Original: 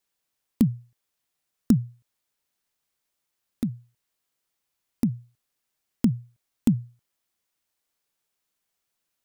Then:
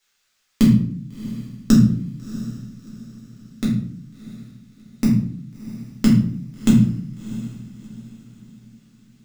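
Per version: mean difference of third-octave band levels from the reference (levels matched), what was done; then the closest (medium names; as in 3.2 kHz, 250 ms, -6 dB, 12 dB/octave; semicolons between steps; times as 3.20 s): 12.0 dB: high-order bell 3 kHz +10.5 dB 3 oct; on a send: echo that smears into a reverb 673 ms, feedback 40%, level -15 dB; on the sum: simulated room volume 80 m³, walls mixed, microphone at 1.5 m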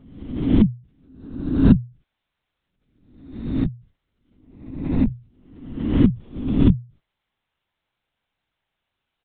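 4.5 dB: reverse spectral sustain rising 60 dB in 0.89 s; dynamic bell 100 Hz, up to -8 dB, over -40 dBFS, Q 1.5; doubling 16 ms -14 dB; LPC vocoder at 8 kHz whisper; trim +4.5 dB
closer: second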